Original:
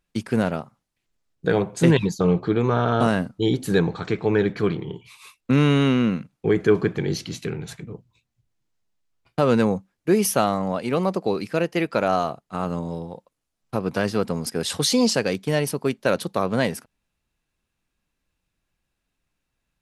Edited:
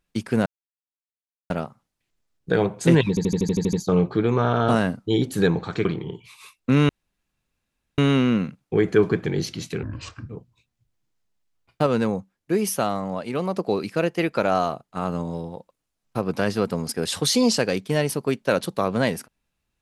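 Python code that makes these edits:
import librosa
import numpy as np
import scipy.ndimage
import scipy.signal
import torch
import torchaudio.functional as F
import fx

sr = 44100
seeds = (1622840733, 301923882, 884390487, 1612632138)

y = fx.edit(x, sr, fx.insert_silence(at_s=0.46, length_s=1.04),
    fx.stutter(start_s=2.05, slice_s=0.08, count=9),
    fx.cut(start_s=4.17, length_s=0.49),
    fx.insert_room_tone(at_s=5.7, length_s=1.09),
    fx.speed_span(start_s=7.55, length_s=0.32, speed=0.69),
    fx.clip_gain(start_s=9.44, length_s=1.7, db=-3.5), tone=tone)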